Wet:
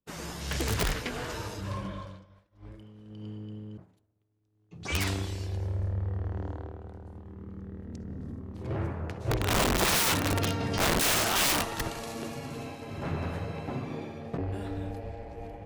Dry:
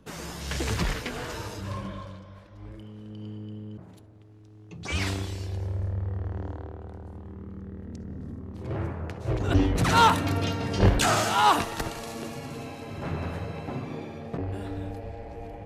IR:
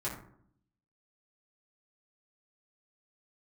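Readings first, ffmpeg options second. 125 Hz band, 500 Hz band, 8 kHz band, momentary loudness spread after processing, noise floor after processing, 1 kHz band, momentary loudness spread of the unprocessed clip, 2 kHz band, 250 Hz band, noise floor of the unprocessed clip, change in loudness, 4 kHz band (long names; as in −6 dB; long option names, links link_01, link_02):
−3.5 dB, −2.0 dB, +4.0 dB, 20 LU, −69 dBFS, −7.5 dB, 20 LU, −0.5 dB, −3.5 dB, −49 dBFS, −2.5 dB, +1.0 dB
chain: -af "aeval=exprs='(mod(8.91*val(0)+1,2)-1)/8.91':channel_layout=same,acontrast=27,agate=range=-33dB:threshold=-32dB:ratio=3:detection=peak,volume=-6dB"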